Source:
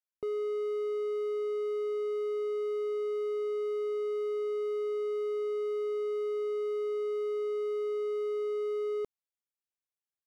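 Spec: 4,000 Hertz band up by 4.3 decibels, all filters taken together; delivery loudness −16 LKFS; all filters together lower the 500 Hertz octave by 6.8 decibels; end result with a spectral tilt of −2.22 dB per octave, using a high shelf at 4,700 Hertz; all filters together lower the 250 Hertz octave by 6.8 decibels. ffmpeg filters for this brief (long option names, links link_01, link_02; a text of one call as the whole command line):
ffmpeg -i in.wav -af "equalizer=frequency=250:width_type=o:gain=-7,equalizer=frequency=500:width_type=o:gain=-6,equalizer=frequency=4000:width_type=o:gain=4.5,highshelf=frequency=4700:gain=4,volume=23.5dB" out.wav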